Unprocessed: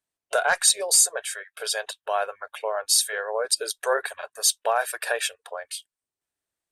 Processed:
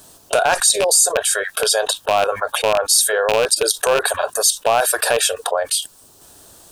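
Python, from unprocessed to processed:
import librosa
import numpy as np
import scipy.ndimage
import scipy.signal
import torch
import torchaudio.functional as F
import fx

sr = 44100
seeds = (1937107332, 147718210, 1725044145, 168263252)

y = fx.rattle_buzz(x, sr, strikes_db=-43.0, level_db=-13.0)
y = fx.peak_eq(y, sr, hz=2100.0, db=-15.0, octaves=0.8)
y = fx.env_flatten(y, sr, amount_pct=70)
y = y * 10.0 ** (3.5 / 20.0)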